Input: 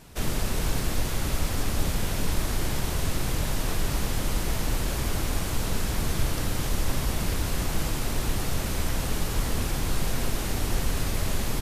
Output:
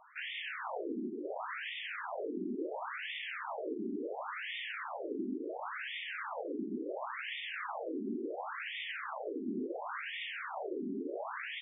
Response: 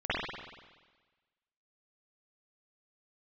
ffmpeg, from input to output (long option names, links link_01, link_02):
-filter_complex "[0:a]asplit=2[link_01][link_02];[1:a]atrim=start_sample=2205,asetrate=38808,aresample=44100[link_03];[link_02][link_03]afir=irnorm=-1:irlink=0,volume=-34dB[link_04];[link_01][link_04]amix=inputs=2:normalize=0,aresample=16000,aresample=44100,afftfilt=real='re*between(b*sr/1024,280*pow(2600/280,0.5+0.5*sin(2*PI*0.71*pts/sr))/1.41,280*pow(2600/280,0.5+0.5*sin(2*PI*0.71*pts/sr))*1.41)':imag='im*between(b*sr/1024,280*pow(2600/280,0.5+0.5*sin(2*PI*0.71*pts/sr))/1.41,280*pow(2600/280,0.5+0.5*sin(2*PI*0.71*pts/sr))*1.41)':win_size=1024:overlap=0.75,volume=1.5dB"